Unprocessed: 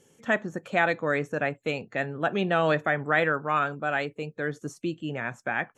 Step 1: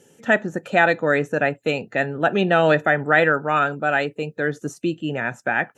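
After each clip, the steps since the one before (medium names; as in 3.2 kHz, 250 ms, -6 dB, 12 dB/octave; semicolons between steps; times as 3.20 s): comb of notches 1.1 kHz; trim +7.5 dB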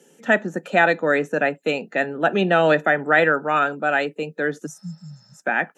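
spectral replace 4.69–5.37 s, 210–5600 Hz after; steep high-pass 160 Hz 48 dB/octave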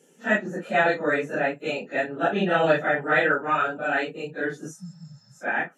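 phase randomisation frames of 100 ms; trim -4 dB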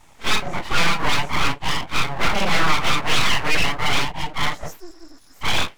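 overdrive pedal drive 20 dB, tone 1.9 kHz, clips at -7 dBFS; full-wave rectifier; trim +2 dB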